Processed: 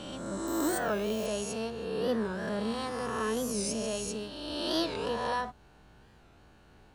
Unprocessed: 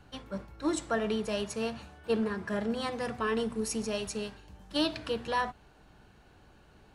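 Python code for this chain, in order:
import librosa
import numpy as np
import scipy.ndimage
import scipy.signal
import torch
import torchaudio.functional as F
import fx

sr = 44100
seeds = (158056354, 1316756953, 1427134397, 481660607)

y = fx.spec_swells(x, sr, rise_s=1.74)
y = fx.resample_bad(y, sr, factor=2, down='filtered', up='hold', at=(0.47, 1.26))
y = fx.dynamic_eq(y, sr, hz=2200.0, q=1.2, threshold_db=-46.0, ratio=4.0, max_db=-5)
y = fx.record_warp(y, sr, rpm=45.0, depth_cents=160.0)
y = y * librosa.db_to_amplitude(-3.0)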